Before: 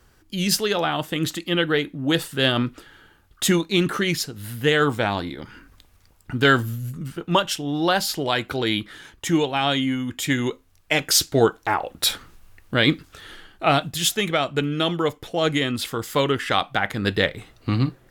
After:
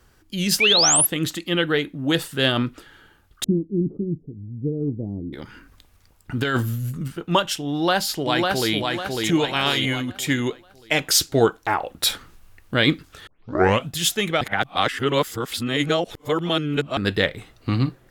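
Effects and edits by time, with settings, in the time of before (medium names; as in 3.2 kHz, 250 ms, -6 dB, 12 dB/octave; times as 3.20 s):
0.60–1.07 s: painted sound rise 2.2–12 kHz -17 dBFS
3.44–5.33 s: inverse Chebyshev low-pass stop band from 1.6 kHz, stop band 70 dB
6.37–7.08 s: compressor with a negative ratio -20 dBFS
7.71–8.75 s: echo throw 550 ms, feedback 40%, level -3 dB
9.43–10.00 s: spectral peaks clipped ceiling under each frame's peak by 15 dB
13.27 s: tape start 0.62 s
14.41–16.97 s: reverse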